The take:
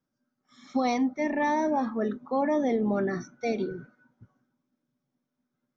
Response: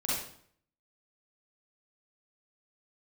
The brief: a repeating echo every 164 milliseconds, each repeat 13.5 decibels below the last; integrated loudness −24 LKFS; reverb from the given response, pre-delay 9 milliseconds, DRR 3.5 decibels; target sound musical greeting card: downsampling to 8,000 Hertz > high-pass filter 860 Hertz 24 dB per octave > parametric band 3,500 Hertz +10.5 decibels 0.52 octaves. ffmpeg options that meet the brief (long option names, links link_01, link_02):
-filter_complex "[0:a]aecho=1:1:164|328:0.211|0.0444,asplit=2[link_01][link_02];[1:a]atrim=start_sample=2205,adelay=9[link_03];[link_02][link_03]afir=irnorm=-1:irlink=0,volume=-10dB[link_04];[link_01][link_04]amix=inputs=2:normalize=0,aresample=8000,aresample=44100,highpass=frequency=860:width=0.5412,highpass=frequency=860:width=1.3066,equalizer=frequency=3500:width_type=o:width=0.52:gain=10.5,volume=10dB"